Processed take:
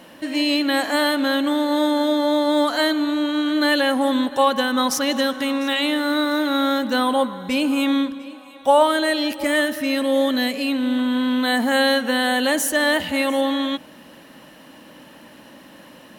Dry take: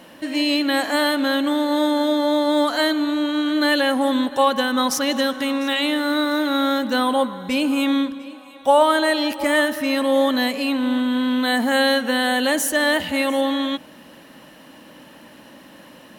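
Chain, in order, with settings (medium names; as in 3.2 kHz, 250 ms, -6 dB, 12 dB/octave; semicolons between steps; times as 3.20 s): 8.87–10.99 s: peaking EQ 980 Hz -7 dB 0.84 oct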